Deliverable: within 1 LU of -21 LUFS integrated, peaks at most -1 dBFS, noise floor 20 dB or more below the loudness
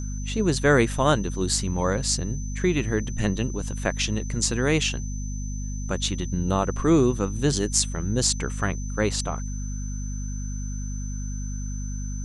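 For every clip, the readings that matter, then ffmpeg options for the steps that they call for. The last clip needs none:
hum 50 Hz; highest harmonic 250 Hz; hum level -28 dBFS; steady tone 6.1 kHz; tone level -41 dBFS; loudness -25.5 LUFS; peak level -2.0 dBFS; loudness target -21.0 LUFS
-> -af "bandreject=f=50:t=h:w=6,bandreject=f=100:t=h:w=6,bandreject=f=150:t=h:w=6,bandreject=f=200:t=h:w=6,bandreject=f=250:t=h:w=6"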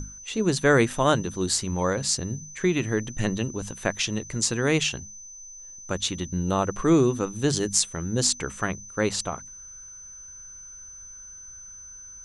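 hum not found; steady tone 6.1 kHz; tone level -41 dBFS
-> -af "bandreject=f=6100:w=30"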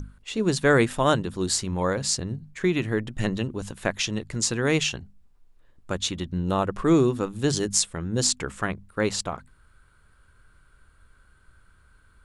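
steady tone not found; loudness -25.0 LUFS; peak level -2.5 dBFS; loudness target -21.0 LUFS
-> -af "volume=1.58,alimiter=limit=0.891:level=0:latency=1"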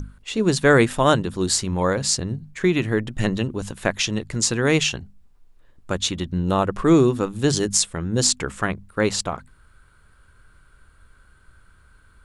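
loudness -21.5 LUFS; peak level -1.0 dBFS; noise floor -55 dBFS

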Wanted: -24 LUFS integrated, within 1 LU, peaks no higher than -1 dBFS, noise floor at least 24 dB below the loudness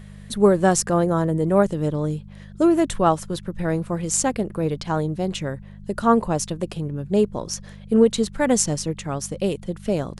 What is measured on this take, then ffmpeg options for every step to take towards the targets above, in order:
hum 50 Hz; highest harmonic 200 Hz; hum level -37 dBFS; loudness -22.0 LUFS; peak level -4.5 dBFS; loudness target -24.0 LUFS
-> -af "bandreject=f=50:t=h:w=4,bandreject=f=100:t=h:w=4,bandreject=f=150:t=h:w=4,bandreject=f=200:t=h:w=4"
-af "volume=0.794"

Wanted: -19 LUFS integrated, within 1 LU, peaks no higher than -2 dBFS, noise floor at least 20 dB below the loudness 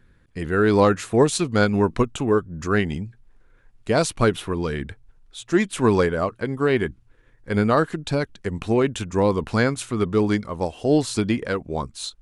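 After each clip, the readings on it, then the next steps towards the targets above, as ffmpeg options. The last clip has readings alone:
loudness -22.0 LUFS; peak level -6.0 dBFS; loudness target -19.0 LUFS
-> -af "volume=1.41"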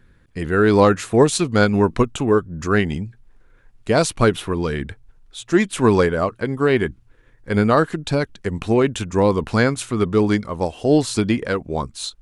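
loudness -19.0 LUFS; peak level -3.0 dBFS; noise floor -53 dBFS

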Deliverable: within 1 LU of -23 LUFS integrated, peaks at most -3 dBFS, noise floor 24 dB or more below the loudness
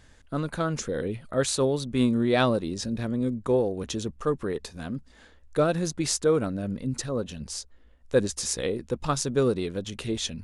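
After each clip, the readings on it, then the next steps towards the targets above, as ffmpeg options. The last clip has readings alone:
loudness -27.5 LUFS; peak level -8.0 dBFS; loudness target -23.0 LUFS
-> -af "volume=1.68"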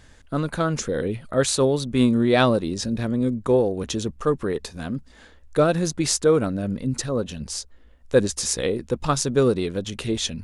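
loudness -23.0 LUFS; peak level -3.5 dBFS; noise floor -50 dBFS

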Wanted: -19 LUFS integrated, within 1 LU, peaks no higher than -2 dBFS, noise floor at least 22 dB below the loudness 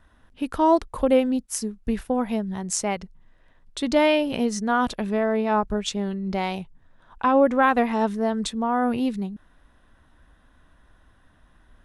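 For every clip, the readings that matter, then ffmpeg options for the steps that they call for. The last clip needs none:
loudness -23.5 LUFS; peak level -7.5 dBFS; loudness target -19.0 LUFS
-> -af "volume=1.68"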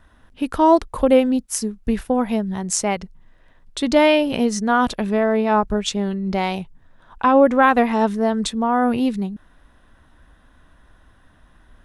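loudness -19.0 LUFS; peak level -3.0 dBFS; noise floor -54 dBFS

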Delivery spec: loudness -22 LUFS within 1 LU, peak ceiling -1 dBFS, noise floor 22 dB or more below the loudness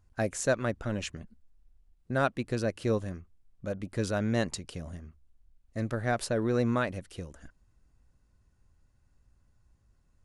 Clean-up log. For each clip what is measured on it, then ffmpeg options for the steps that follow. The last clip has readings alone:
loudness -31.5 LUFS; peak level -14.5 dBFS; loudness target -22.0 LUFS
-> -af "volume=2.99"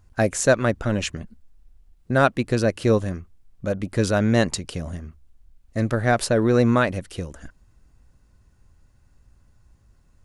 loudness -22.0 LUFS; peak level -5.0 dBFS; noise floor -59 dBFS

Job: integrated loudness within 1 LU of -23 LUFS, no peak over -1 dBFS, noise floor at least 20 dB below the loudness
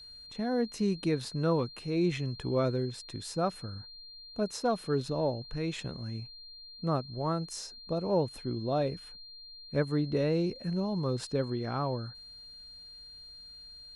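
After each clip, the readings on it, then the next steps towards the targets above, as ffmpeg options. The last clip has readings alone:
steady tone 4.2 kHz; tone level -47 dBFS; loudness -32.5 LUFS; peak level -16.5 dBFS; loudness target -23.0 LUFS
-> -af "bandreject=f=4200:w=30"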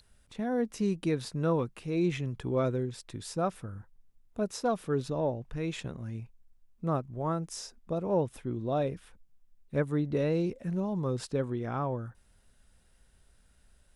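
steady tone not found; loudness -32.5 LUFS; peak level -16.5 dBFS; loudness target -23.0 LUFS
-> -af "volume=2.99"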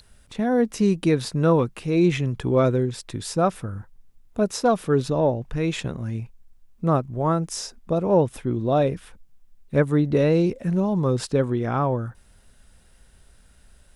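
loudness -23.0 LUFS; peak level -7.0 dBFS; noise floor -55 dBFS

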